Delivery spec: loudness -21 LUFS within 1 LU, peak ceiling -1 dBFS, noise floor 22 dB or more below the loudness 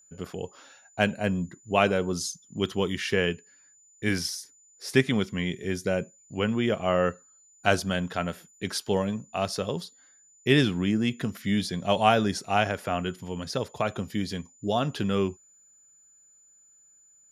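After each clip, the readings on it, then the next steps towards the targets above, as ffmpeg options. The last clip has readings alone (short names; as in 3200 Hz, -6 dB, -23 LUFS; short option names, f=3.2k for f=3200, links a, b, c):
steady tone 7000 Hz; tone level -56 dBFS; loudness -27.5 LUFS; peak -5.0 dBFS; loudness target -21.0 LUFS
-> -af "bandreject=f=7k:w=30"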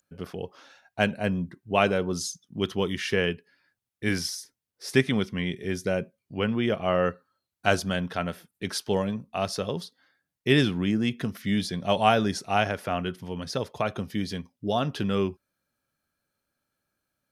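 steady tone none; loudness -27.5 LUFS; peak -5.0 dBFS; loudness target -21.0 LUFS
-> -af "volume=6.5dB,alimiter=limit=-1dB:level=0:latency=1"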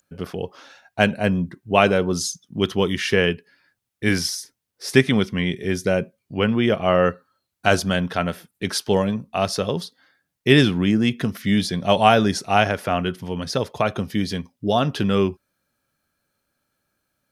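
loudness -21.5 LUFS; peak -1.0 dBFS; noise floor -80 dBFS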